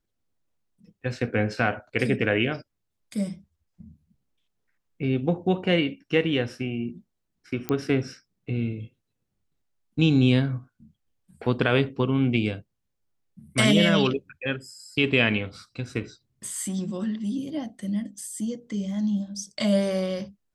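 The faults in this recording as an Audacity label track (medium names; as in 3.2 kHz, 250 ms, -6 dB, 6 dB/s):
7.690000	7.690000	pop -14 dBFS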